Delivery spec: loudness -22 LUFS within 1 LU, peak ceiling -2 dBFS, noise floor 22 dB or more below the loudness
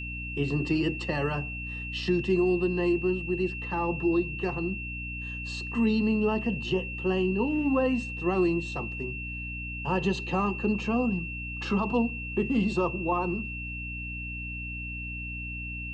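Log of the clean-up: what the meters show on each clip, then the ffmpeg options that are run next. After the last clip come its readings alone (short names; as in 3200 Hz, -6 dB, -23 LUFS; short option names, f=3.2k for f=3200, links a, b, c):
hum 60 Hz; harmonics up to 300 Hz; hum level -36 dBFS; steady tone 2700 Hz; tone level -36 dBFS; loudness -29.0 LUFS; peak -14.5 dBFS; loudness target -22.0 LUFS
-> -af "bandreject=f=60:t=h:w=4,bandreject=f=120:t=h:w=4,bandreject=f=180:t=h:w=4,bandreject=f=240:t=h:w=4,bandreject=f=300:t=h:w=4"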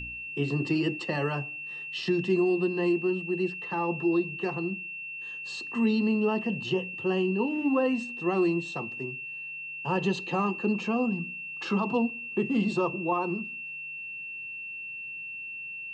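hum none; steady tone 2700 Hz; tone level -36 dBFS
-> -af "bandreject=f=2.7k:w=30"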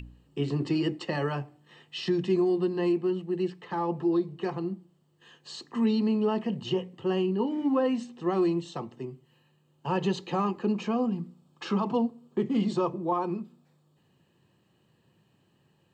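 steady tone none; loudness -29.0 LUFS; peak -16.0 dBFS; loudness target -22.0 LUFS
-> -af "volume=7dB"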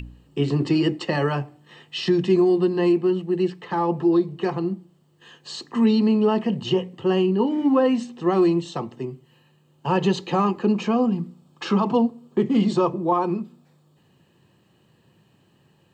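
loudness -22.0 LUFS; peak -9.0 dBFS; noise floor -61 dBFS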